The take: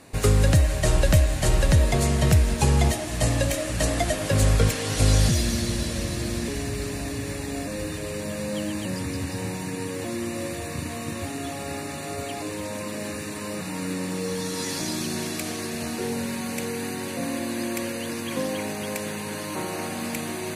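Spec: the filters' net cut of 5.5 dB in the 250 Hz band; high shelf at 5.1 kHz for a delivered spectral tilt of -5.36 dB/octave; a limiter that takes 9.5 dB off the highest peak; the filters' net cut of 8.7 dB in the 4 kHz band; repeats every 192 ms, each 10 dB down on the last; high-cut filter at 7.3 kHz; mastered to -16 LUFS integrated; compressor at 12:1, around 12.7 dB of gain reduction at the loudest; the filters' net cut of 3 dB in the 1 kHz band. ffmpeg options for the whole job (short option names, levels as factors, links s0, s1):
-af "lowpass=7300,equalizer=f=250:t=o:g=-7.5,equalizer=f=1000:t=o:g=-3,equalizer=f=4000:t=o:g=-8,highshelf=f=5100:g=-5.5,acompressor=threshold=0.0398:ratio=12,alimiter=level_in=1.58:limit=0.0631:level=0:latency=1,volume=0.631,aecho=1:1:192|384|576|768:0.316|0.101|0.0324|0.0104,volume=11.2"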